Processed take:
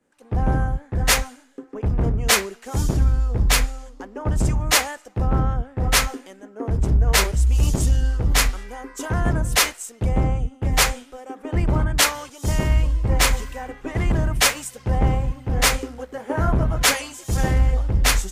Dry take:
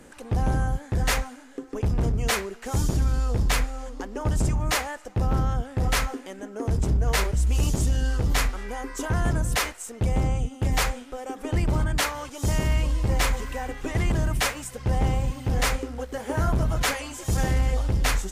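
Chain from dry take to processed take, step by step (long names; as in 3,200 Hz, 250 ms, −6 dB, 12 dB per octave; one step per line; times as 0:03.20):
multiband upward and downward expander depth 100%
level +3.5 dB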